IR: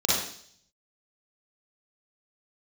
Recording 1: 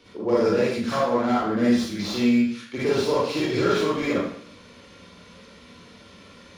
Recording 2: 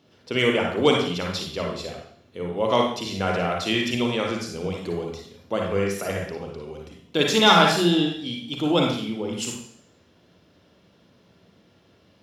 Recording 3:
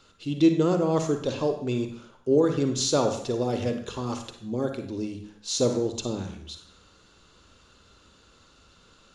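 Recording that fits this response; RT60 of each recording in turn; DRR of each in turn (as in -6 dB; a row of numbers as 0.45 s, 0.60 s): 1; 0.60 s, 0.60 s, 0.60 s; -8.0 dB, 0.5 dB, 6.0 dB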